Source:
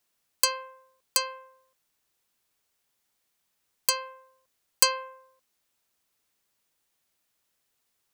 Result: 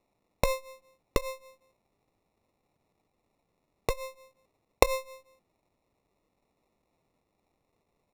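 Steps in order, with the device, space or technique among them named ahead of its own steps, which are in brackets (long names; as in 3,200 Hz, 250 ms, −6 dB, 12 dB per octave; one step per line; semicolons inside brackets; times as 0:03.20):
crushed at another speed (tape speed factor 0.8×; decimation without filtering 35×; tape speed factor 1.25×)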